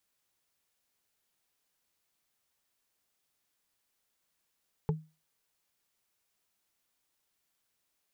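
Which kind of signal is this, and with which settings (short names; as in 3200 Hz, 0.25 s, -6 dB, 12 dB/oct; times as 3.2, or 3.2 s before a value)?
wood hit, lowest mode 157 Hz, modes 3, decay 0.29 s, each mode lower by 4 dB, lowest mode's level -23 dB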